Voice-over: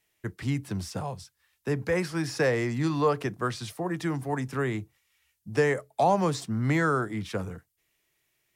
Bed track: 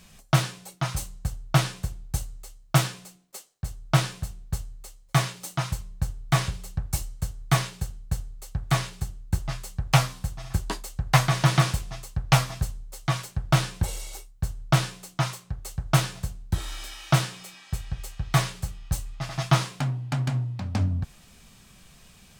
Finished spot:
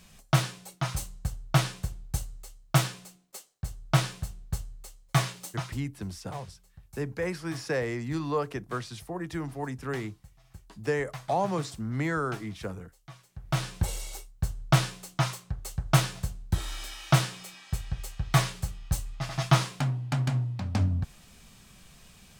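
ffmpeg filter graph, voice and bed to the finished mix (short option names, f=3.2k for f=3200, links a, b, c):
-filter_complex "[0:a]adelay=5300,volume=-4.5dB[a];[1:a]volume=19dB,afade=t=out:st=5.38:d=0.52:silence=0.1,afade=t=in:st=13.29:d=0.6:silence=0.0841395[b];[a][b]amix=inputs=2:normalize=0"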